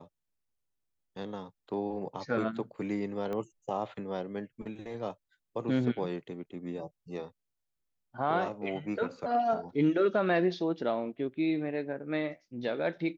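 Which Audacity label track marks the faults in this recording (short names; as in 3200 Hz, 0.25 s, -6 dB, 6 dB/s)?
3.330000	3.330000	pop -25 dBFS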